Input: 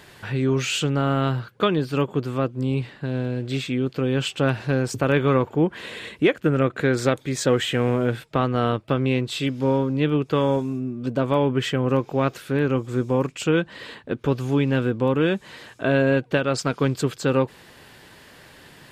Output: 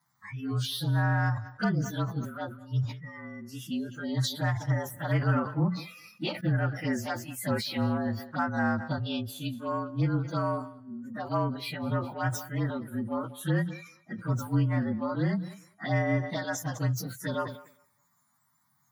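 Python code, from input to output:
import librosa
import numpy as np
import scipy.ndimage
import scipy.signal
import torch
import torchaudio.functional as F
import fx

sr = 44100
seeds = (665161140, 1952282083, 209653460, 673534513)

p1 = fx.partial_stretch(x, sr, pct=111)
p2 = scipy.signal.sosfilt(scipy.signal.butter(4, 110.0, 'highpass', fs=sr, output='sos'), p1)
p3 = fx.hum_notches(p2, sr, base_hz=60, count=3)
p4 = fx.noise_reduce_blind(p3, sr, reduce_db=20)
p5 = fx.curve_eq(p4, sr, hz=(230.0, 430.0, 910.0, 1500.0, 3300.0, 6600.0), db=(0, -18, 3, 1, -6, -3))
p6 = 10.0 ** (-26.5 / 20.0) * np.tanh(p5 / 10.0 ** (-26.5 / 20.0))
p7 = p5 + F.gain(torch.from_numpy(p6), -11.0).numpy()
p8 = fx.env_phaser(p7, sr, low_hz=440.0, high_hz=3900.0, full_db=-22.5)
p9 = fx.dynamic_eq(p8, sr, hz=1100.0, q=1.5, threshold_db=-42.0, ratio=4.0, max_db=-6)
p10 = fx.echo_thinned(p9, sr, ms=204, feedback_pct=20, hz=180.0, wet_db=-21.5)
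y = fx.sustainer(p10, sr, db_per_s=100.0)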